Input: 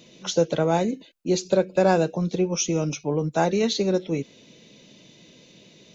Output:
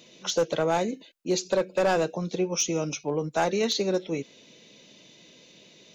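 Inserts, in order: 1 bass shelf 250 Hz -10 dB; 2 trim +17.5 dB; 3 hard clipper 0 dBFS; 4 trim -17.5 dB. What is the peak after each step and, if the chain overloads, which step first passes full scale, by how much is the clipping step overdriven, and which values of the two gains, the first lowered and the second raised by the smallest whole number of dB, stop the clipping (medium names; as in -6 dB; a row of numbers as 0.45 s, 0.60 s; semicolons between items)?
-10.0 dBFS, +7.5 dBFS, 0.0 dBFS, -17.5 dBFS; step 2, 7.5 dB; step 2 +9.5 dB, step 4 -9.5 dB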